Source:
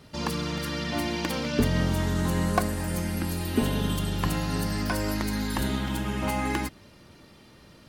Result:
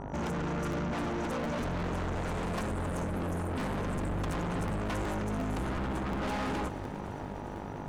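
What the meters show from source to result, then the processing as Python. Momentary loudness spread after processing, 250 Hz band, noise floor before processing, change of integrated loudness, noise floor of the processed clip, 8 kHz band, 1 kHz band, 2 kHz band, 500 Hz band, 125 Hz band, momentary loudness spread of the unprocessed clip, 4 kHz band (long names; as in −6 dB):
5 LU, −6.0 dB, −53 dBFS, −6.0 dB, −40 dBFS, −11.5 dB, −3.0 dB, −6.0 dB, −3.0 dB, −6.0 dB, 5 LU, −12.0 dB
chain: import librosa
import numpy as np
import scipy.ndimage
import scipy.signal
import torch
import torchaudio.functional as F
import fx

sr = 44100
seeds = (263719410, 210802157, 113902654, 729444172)

p1 = fx.brickwall_bandstop(x, sr, low_hz=1500.0, high_hz=5800.0)
p2 = fx.fold_sine(p1, sr, drive_db=20, ceiling_db=-10.0)
p3 = p1 + (p2 * librosa.db_to_amplitude(-11.5))
p4 = fx.dmg_buzz(p3, sr, base_hz=50.0, harmonics=19, level_db=-34.0, tilt_db=0, odd_only=False)
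p5 = fx.spec_gate(p4, sr, threshold_db=-30, keep='strong')
p6 = fx.air_absorb(p5, sr, metres=89.0)
p7 = 10.0 ** (-27.5 / 20.0) * np.tanh(p6 / 10.0 ** (-27.5 / 20.0))
p8 = fx.buffer_crackle(p7, sr, first_s=0.71, period_s=0.36, block=512, kind='repeat')
p9 = fx.echo_crushed(p8, sr, ms=407, feedback_pct=80, bits=10, wet_db=-15.0)
y = p9 * librosa.db_to_amplitude(-4.0)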